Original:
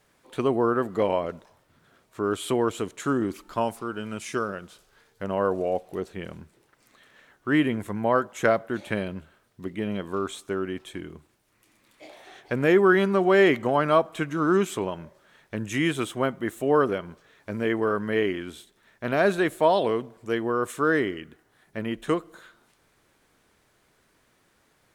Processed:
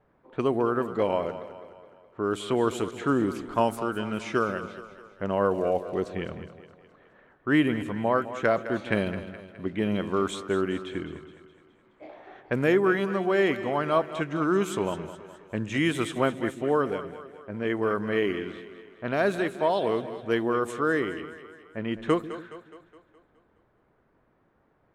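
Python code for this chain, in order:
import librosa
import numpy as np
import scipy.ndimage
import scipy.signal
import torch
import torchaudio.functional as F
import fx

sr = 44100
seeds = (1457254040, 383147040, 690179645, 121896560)

y = fx.rider(x, sr, range_db=4, speed_s=0.5)
y = fx.env_lowpass(y, sr, base_hz=1100.0, full_db=-21.0)
y = fx.echo_split(y, sr, split_hz=350.0, low_ms=142, high_ms=209, feedback_pct=52, wet_db=-12.5)
y = y * 10.0 ** (-1.5 / 20.0)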